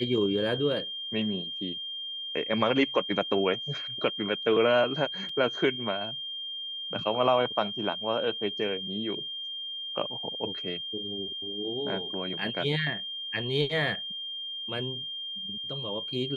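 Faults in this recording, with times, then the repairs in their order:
whine 3.2 kHz -34 dBFS
5.29 s: dropout 3.7 ms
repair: band-stop 3.2 kHz, Q 30; interpolate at 5.29 s, 3.7 ms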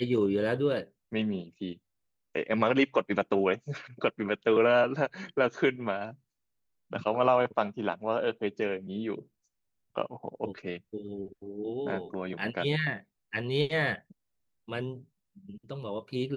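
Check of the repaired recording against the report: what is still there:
nothing left

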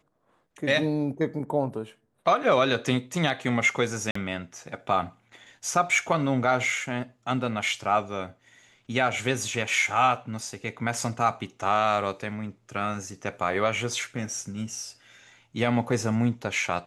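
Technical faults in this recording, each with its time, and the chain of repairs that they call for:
4.11–4.15 s: dropout 44 ms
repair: interpolate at 4.11 s, 44 ms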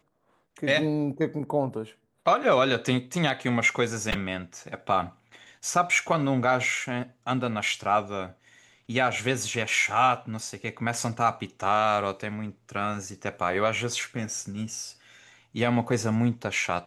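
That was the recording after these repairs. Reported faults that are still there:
nothing left

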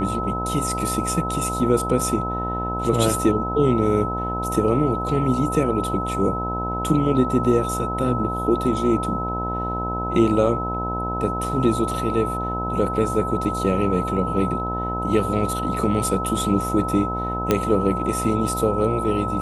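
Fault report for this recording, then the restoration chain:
buzz 60 Hz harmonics 17 -28 dBFS
whine 1.3 kHz -26 dBFS
17.51 s: pop -5 dBFS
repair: de-click; de-hum 60 Hz, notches 17; band-stop 1.3 kHz, Q 30

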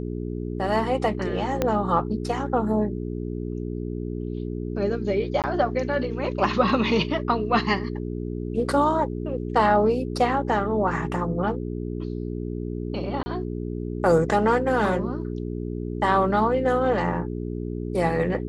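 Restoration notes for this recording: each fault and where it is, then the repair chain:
hum 60 Hz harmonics 7 -30 dBFS
1.62 s: pop -9 dBFS
5.42–5.44 s: dropout 18 ms
13.23–13.26 s: dropout 30 ms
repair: de-click; de-hum 60 Hz, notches 7; interpolate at 5.42 s, 18 ms; interpolate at 13.23 s, 30 ms

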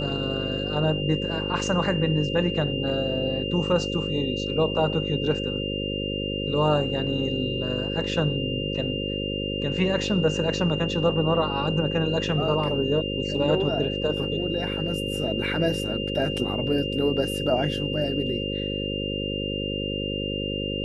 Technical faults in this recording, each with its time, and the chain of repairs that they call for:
buzz 50 Hz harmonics 11 -30 dBFS
whine 2.8 kHz -31 dBFS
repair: band-stop 2.8 kHz, Q 30; de-hum 50 Hz, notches 11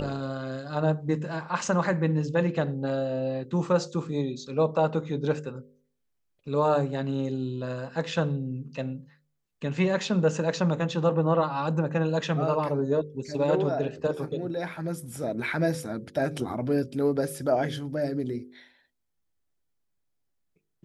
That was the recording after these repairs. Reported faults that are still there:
nothing left

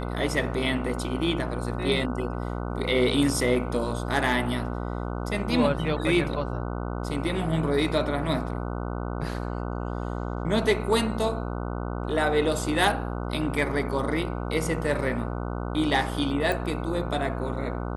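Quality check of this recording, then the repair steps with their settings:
buzz 60 Hz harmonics 25 -31 dBFS
16.52 s: pop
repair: de-click; de-hum 60 Hz, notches 25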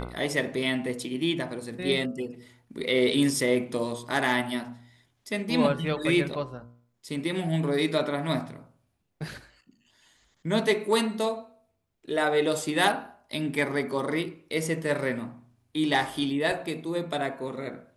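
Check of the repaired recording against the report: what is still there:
16.52 s: pop

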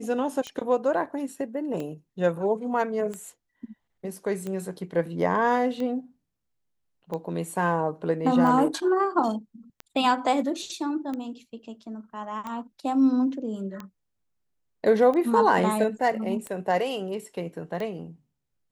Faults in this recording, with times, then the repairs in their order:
tick 45 rpm -21 dBFS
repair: de-click

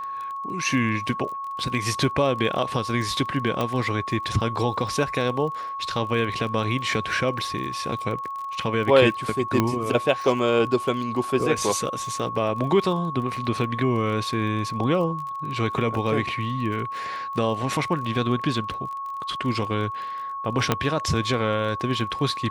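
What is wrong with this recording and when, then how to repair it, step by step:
crackle 27 per s -32 dBFS
whine 1.1 kHz -29 dBFS
3.61 s: pop -12 dBFS
9.60 s: pop -7 dBFS
20.72 s: pop -5 dBFS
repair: de-click; band-stop 1.1 kHz, Q 30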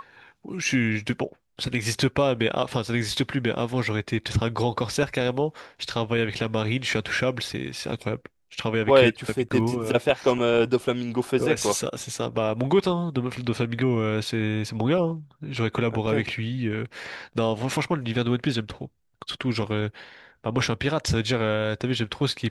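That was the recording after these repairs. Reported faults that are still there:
3.61 s: pop
9.60 s: pop
20.72 s: pop

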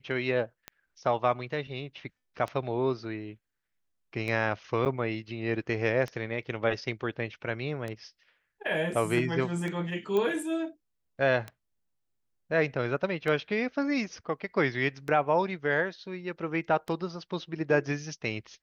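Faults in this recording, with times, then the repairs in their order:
tick 33 1/3 rpm -21 dBFS
4.85–4.86 s: dropout 8.9 ms
10.17 s: pop -18 dBFS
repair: de-click; interpolate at 4.85 s, 8.9 ms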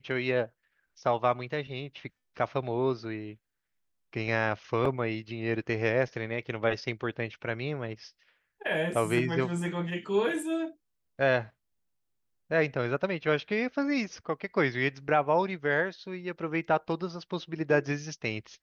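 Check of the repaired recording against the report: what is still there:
nothing left

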